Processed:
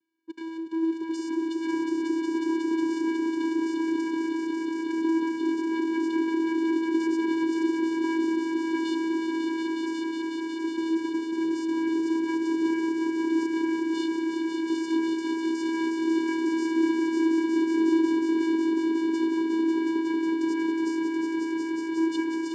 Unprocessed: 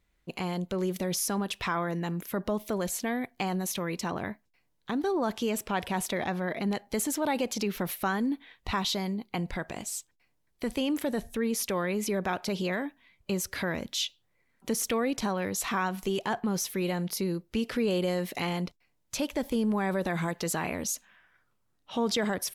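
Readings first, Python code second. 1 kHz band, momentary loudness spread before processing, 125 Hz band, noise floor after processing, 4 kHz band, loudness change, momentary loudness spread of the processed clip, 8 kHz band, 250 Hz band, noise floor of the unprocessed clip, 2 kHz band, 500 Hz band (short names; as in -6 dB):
-1.0 dB, 6 LU, under -20 dB, -33 dBFS, -4.0 dB, +4.5 dB, 5 LU, under -10 dB, +8.5 dB, -73 dBFS, +0.5 dB, +2.0 dB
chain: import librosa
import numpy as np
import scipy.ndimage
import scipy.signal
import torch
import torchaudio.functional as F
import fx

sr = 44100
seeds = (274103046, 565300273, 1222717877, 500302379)

y = fx.lower_of_two(x, sr, delay_ms=0.54)
y = fx.echo_swell(y, sr, ms=182, loudest=5, wet_db=-5)
y = fx.vocoder(y, sr, bands=8, carrier='square', carrier_hz=326.0)
y = y * 10.0 ** (2.5 / 20.0)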